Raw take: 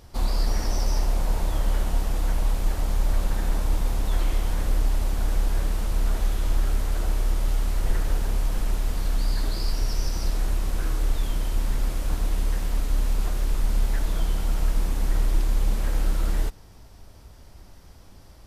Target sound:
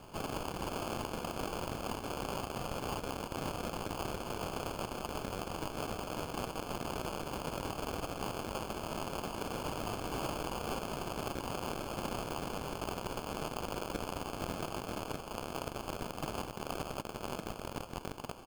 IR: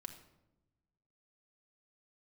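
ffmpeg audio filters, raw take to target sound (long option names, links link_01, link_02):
-filter_complex "[0:a]asplit=2[link_01][link_02];[link_02]aecho=0:1:522|1044|1566|2088:0.562|0.157|0.0441|0.0123[link_03];[link_01][link_03]amix=inputs=2:normalize=0,acompressor=threshold=-31dB:ratio=20,aeval=exprs='(mod(84.1*val(0)+1,2)-1)/84.1':channel_layout=same,highpass=frequency=1200:width=0.5412,highpass=frequency=1200:width=1.3066,acrusher=samples=23:mix=1:aa=0.000001,volume=7.5dB"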